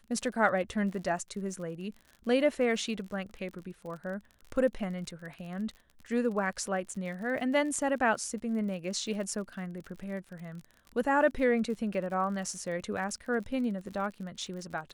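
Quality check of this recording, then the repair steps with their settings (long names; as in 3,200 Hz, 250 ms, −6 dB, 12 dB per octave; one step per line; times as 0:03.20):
surface crackle 48 per second −40 dBFS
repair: click removal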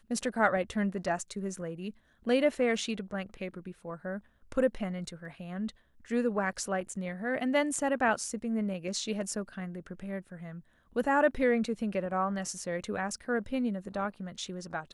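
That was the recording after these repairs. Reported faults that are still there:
none of them is left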